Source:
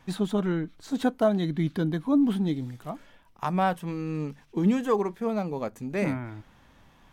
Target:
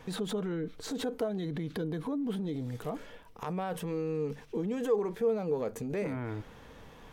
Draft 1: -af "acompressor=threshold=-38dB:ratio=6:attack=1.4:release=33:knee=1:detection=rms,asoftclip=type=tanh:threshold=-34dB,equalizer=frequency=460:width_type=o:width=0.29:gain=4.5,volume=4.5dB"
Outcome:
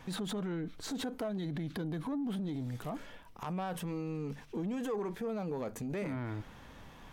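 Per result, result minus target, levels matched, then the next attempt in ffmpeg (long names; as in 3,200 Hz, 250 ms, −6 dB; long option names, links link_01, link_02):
soft clipping: distortion +20 dB; 500 Hz band −3.5 dB
-af "acompressor=threshold=-38dB:ratio=6:attack=1.4:release=33:knee=1:detection=rms,asoftclip=type=tanh:threshold=-23dB,equalizer=frequency=460:width_type=o:width=0.29:gain=4.5,volume=4.5dB"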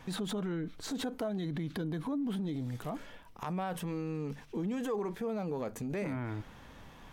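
500 Hz band −3.5 dB
-af "acompressor=threshold=-38dB:ratio=6:attack=1.4:release=33:knee=1:detection=rms,asoftclip=type=tanh:threshold=-23dB,equalizer=frequency=460:width_type=o:width=0.29:gain=14.5,volume=4.5dB"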